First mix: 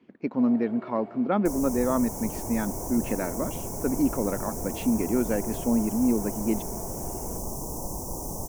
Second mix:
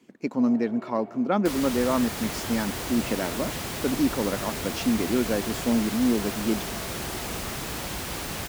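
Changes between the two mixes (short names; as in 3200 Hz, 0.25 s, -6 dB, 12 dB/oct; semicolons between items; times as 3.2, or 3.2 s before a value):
speech: remove air absorption 300 m; second sound: remove Chebyshev band-stop 980–5800 Hz, order 4; master: add HPF 46 Hz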